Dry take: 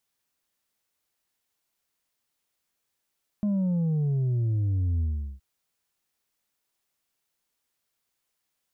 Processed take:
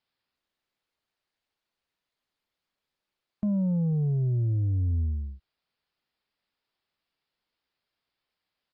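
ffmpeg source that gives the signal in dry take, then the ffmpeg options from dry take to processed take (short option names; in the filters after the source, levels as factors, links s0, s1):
-f lavfi -i "aevalsrc='0.0708*clip((1.97-t)/0.39,0,1)*tanh(1.5*sin(2*PI*210*1.97/log(65/210)*(exp(log(65/210)*t/1.97)-1)))/tanh(1.5)':d=1.97:s=44100"
-af "aresample=11025,aresample=44100" -ar 48000 -c:a libopus -b:a 48k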